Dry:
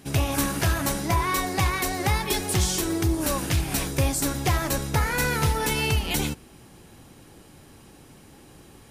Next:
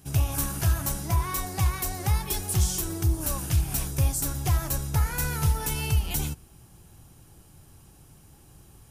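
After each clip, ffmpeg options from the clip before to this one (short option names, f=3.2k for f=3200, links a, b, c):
-af "equalizer=f=250:t=o:w=1:g=-11,equalizer=f=500:t=o:w=1:g=-10,equalizer=f=1k:t=o:w=1:g=-5,equalizer=f=2k:t=o:w=1:g=-11,equalizer=f=4k:t=o:w=1:g=-8,equalizer=f=8k:t=o:w=1:g=-3,volume=2.5dB"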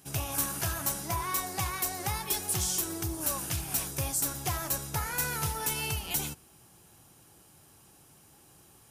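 -af "highpass=f=360:p=1"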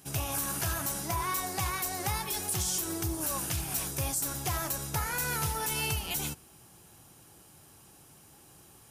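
-af "alimiter=limit=-22.5dB:level=0:latency=1:release=89,volume=2dB"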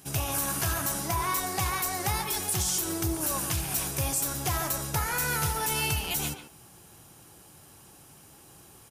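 -filter_complex "[0:a]asplit=2[a][b];[b]adelay=140,highpass=300,lowpass=3.4k,asoftclip=type=hard:threshold=-30.5dB,volume=-8dB[c];[a][c]amix=inputs=2:normalize=0,volume=3dB"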